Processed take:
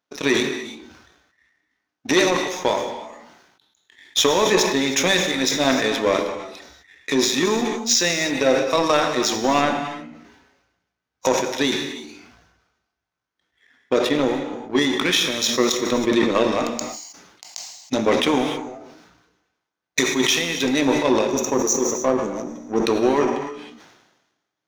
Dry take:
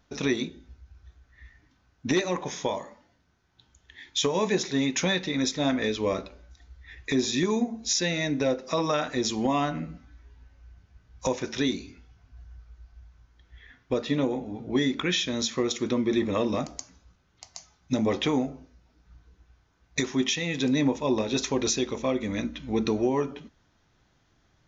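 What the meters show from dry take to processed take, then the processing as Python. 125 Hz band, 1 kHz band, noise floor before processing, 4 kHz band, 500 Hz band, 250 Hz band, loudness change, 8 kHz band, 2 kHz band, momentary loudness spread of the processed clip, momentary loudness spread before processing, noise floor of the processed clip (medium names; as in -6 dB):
-0.5 dB, +9.5 dB, -67 dBFS, +8.5 dB, +8.0 dB, +4.5 dB, +7.0 dB, no reading, +9.5 dB, 13 LU, 9 LU, -82 dBFS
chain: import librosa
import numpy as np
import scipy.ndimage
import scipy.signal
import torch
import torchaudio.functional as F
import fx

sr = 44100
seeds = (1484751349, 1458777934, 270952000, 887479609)

p1 = scipy.signal.sosfilt(scipy.signal.butter(2, 290.0, 'highpass', fs=sr, output='sos'), x)
p2 = fx.spec_box(p1, sr, start_s=21.27, length_s=1.57, low_hz=1300.0, high_hz=5600.0, gain_db=-22)
p3 = fx.power_curve(p2, sr, exponent=1.4)
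p4 = np.sign(p3) * np.maximum(np.abs(p3) - 10.0 ** (-43.5 / 20.0), 0.0)
p5 = p3 + (p4 * librosa.db_to_amplitude(-7.5))
p6 = fx.rev_gated(p5, sr, seeds[0], gate_ms=340, shape='flat', drr_db=7.0)
p7 = fx.sustainer(p6, sr, db_per_s=50.0)
y = p7 * librosa.db_to_amplitude(8.0)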